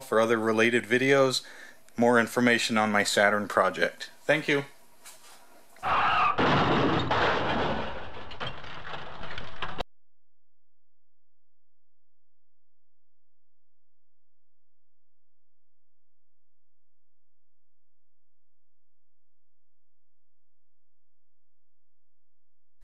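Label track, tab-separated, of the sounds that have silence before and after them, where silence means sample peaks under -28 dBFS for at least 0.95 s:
5.840000	9.810000	sound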